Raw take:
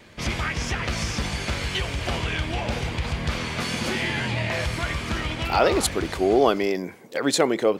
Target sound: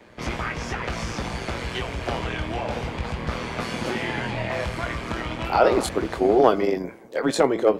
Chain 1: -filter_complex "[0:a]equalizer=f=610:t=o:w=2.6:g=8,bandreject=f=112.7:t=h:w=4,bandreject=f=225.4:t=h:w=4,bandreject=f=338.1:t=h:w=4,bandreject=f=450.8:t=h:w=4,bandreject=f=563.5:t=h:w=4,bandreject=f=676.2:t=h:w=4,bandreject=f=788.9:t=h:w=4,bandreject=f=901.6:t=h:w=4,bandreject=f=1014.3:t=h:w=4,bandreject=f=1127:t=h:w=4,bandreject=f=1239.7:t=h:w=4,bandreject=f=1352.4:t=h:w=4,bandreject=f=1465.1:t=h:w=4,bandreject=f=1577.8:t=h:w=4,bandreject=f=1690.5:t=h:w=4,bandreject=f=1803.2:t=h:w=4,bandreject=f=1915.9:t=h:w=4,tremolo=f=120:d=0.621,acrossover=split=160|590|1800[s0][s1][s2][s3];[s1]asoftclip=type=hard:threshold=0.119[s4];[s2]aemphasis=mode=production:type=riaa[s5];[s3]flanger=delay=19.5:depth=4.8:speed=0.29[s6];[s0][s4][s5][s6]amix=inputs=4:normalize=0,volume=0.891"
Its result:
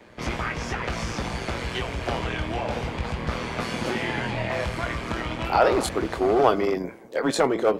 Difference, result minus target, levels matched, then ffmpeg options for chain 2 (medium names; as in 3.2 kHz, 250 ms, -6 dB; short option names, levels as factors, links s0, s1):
hard clipper: distortion +14 dB
-filter_complex "[0:a]equalizer=f=610:t=o:w=2.6:g=8,bandreject=f=112.7:t=h:w=4,bandreject=f=225.4:t=h:w=4,bandreject=f=338.1:t=h:w=4,bandreject=f=450.8:t=h:w=4,bandreject=f=563.5:t=h:w=4,bandreject=f=676.2:t=h:w=4,bandreject=f=788.9:t=h:w=4,bandreject=f=901.6:t=h:w=4,bandreject=f=1014.3:t=h:w=4,bandreject=f=1127:t=h:w=4,bandreject=f=1239.7:t=h:w=4,bandreject=f=1352.4:t=h:w=4,bandreject=f=1465.1:t=h:w=4,bandreject=f=1577.8:t=h:w=4,bandreject=f=1690.5:t=h:w=4,bandreject=f=1803.2:t=h:w=4,bandreject=f=1915.9:t=h:w=4,tremolo=f=120:d=0.621,acrossover=split=160|590|1800[s0][s1][s2][s3];[s1]asoftclip=type=hard:threshold=0.299[s4];[s2]aemphasis=mode=production:type=riaa[s5];[s3]flanger=delay=19.5:depth=4.8:speed=0.29[s6];[s0][s4][s5][s6]amix=inputs=4:normalize=0,volume=0.891"